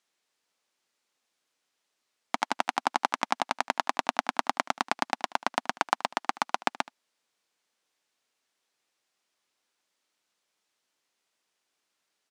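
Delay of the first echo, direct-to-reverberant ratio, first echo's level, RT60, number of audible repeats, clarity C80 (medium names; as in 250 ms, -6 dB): 76 ms, no reverb, -20.5 dB, no reverb, 1, no reverb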